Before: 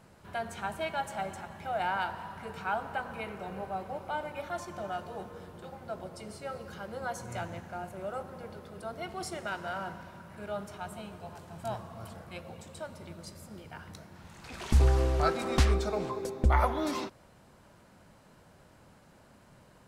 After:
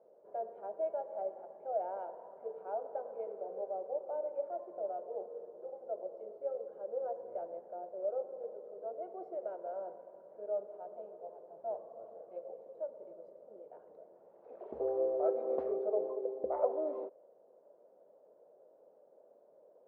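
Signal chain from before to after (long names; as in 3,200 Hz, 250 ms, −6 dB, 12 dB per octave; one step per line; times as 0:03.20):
flat-topped band-pass 520 Hz, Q 2.4
level +4 dB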